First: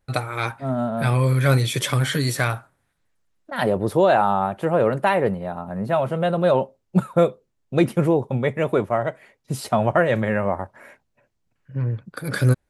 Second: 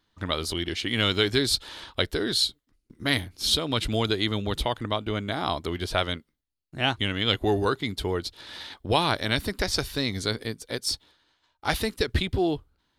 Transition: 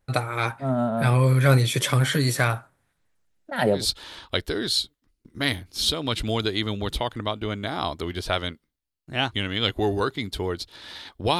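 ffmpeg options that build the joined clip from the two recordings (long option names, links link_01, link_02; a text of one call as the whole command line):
ffmpeg -i cue0.wav -i cue1.wav -filter_complex "[0:a]asettb=1/sr,asplit=3[link_01][link_02][link_03];[link_01]atrim=end=3.264[link_04];[link_02]atrim=start=3.26:end=3.86,asetpts=PTS-STARTPTS,afade=type=in:duration=0.004:curve=qsin,afade=type=out:start_time=0.596:duration=0.004:curve=qsin,equalizer=frequency=1100:width=7.1:gain=-12[link_05];[link_03]atrim=start=3.856[link_06];[link_04][link_05]acrossfade=duration=0.004:curve1=hsin:curve2=qsin[link_07];[link_07][link_06]acrossfade=duration=0.004:curve1=qsin:curve2=hsin,apad=whole_dur=11.39,atrim=end=11.39,atrim=end=3.86,asetpts=PTS-STARTPTS[link_08];[1:a]atrim=start=1.37:end=9.04,asetpts=PTS-STARTPTS[link_09];[link_08][link_09]acrossfade=duration=0.14:curve1=tri:curve2=tri" out.wav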